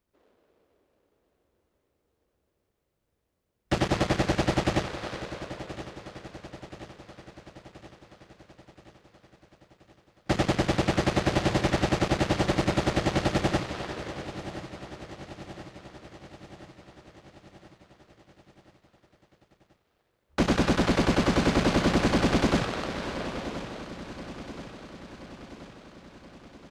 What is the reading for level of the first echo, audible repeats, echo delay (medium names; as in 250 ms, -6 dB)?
-13.5 dB, 5, 1027 ms